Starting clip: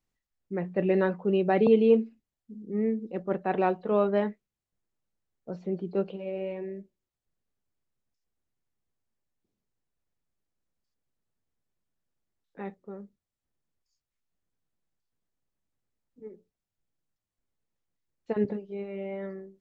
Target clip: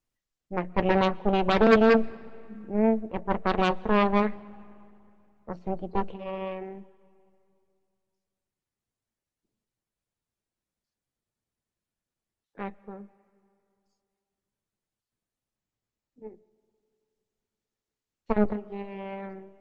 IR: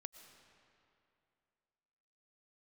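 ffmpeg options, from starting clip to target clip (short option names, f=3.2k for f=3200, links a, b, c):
-filter_complex "[0:a]asettb=1/sr,asplit=3[a][b][c];[a]atrim=end=4.264[d];[b]atrim=start=4.26:end=5.53,asetpts=PTS-STARTPTS,afade=t=in:d=0.004:c=qsin,afade=t=out:st=1.266:d=0.004:c=qsin,lowpass=f=2.1k:t=q:w=3.4[e];[c]atrim=start=5.526[f];[d][e]acrossfade=d=0.004:c1=hsin:c2=qsin[g];[g][f]acrossfade=d=0.004:c1=qsin:c2=hsin,aeval=exprs='0.316*(cos(1*acos(clip(val(0)/0.316,-1,1)))-cos(1*PI/2))+0.0126*(cos(3*acos(clip(val(0)/0.316,-1,1)))-cos(3*PI/2))+0.0631*(cos(4*acos(clip(val(0)/0.316,-1,1)))-cos(4*PI/2))+0.141*(cos(6*acos(clip(val(0)/0.316,-1,1)))-cos(6*PI/2))':c=same,asplit=2[h][i];[1:a]atrim=start_sample=2205,adelay=9[j];[i][j]afir=irnorm=-1:irlink=0,volume=-7.5dB[k];[h][k]amix=inputs=2:normalize=0" -ar 48000 -c:a libopus -b:a 24k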